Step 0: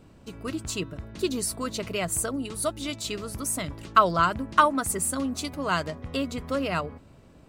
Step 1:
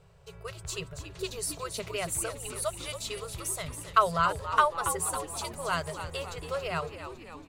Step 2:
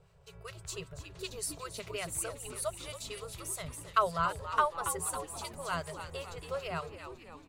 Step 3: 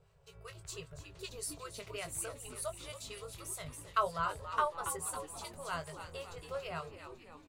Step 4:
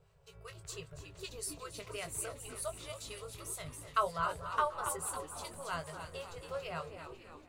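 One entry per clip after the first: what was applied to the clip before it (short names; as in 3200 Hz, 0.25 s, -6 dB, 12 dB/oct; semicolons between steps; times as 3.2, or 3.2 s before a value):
FFT band-reject 180–370 Hz; frequency-shifting echo 0.278 s, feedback 62%, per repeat -82 Hz, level -10 dB; gain -4 dB
harmonic tremolo 5.2 Hz, depth 50%, crossover 1200 Hz; gain -2.5 dB
doubler 20 ms -8 dB; gain -4.5 dB
echo with dull and thin repeats by turns 0.245 s, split 2000 Hz, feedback 50%, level -11 dB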